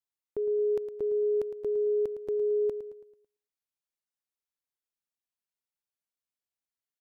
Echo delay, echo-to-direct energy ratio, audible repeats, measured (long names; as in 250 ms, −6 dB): 110 ms, −10.5 dB, 4